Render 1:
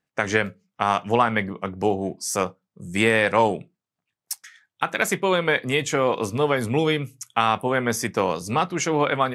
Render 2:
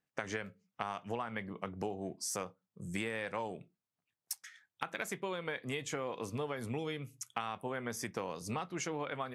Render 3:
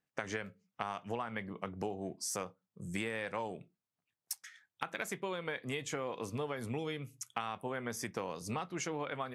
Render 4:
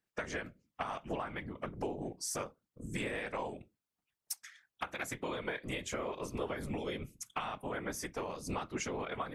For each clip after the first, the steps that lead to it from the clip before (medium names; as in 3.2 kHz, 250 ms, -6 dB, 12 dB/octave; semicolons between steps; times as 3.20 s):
compression 6:1, threshold -28 dBFS, peak gain reduction 14.5 dB; trim -7 dB
no audible change
whisper effect